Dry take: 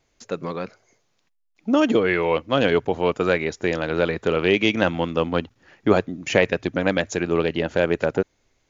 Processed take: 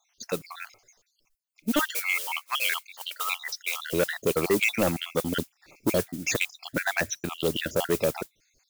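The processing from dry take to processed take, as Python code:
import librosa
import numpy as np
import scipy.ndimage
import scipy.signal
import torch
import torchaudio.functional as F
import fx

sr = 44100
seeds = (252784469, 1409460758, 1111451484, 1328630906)

y = fx.spec_dropout(x, sr, seeds[0], share_pct=60)
y = fx.mod_noise(y, sr, seeds[1], snr_db=22)
y = fx.highpass(y, sr, hz=1000.0, slope=24, at=(1.79, 3.93))
y = 10.0 ** (-16.0 / 20.0) * np.tanh(y / 10.0 ** (-16.0 / 20.0))
y = fx.high_shelf(y, sr, hz=3700.0, db=11.5)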